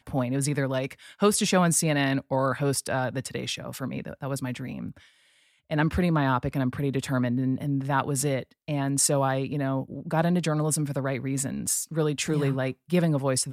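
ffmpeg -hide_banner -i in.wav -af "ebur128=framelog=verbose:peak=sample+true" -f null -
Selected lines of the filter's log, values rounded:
Integrated loudness:
  I:         -26.5 LUFS
  Threshold: -36.7 LUFS
Loudness range:
  LRA:         4.8 LU
  Threshold: -47.0 LUFS
  LRA low:   -30.2 LUFS
  LRA high:  -25.4 LUFS
Sample peak:
  Peak:       -9.4 dBFS
True peak:
  Peak:       -9.4 dBFS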